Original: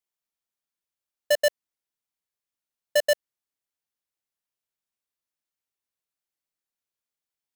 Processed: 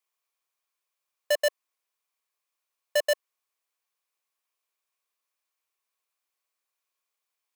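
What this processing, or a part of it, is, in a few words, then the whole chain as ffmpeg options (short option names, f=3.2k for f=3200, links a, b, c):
laptop speaker: -af "highpass=f=380:w=0.5412,highpass=f=380:w=1.3066,equalizer=f=1.1k:t=o:w=0.2:g=10.5,equalizer=f=2.4k:t=o:w=0.23:g=6,alimiter=limit=-17.5dB:level=0:latency=1:release=43,volume=4.5dB"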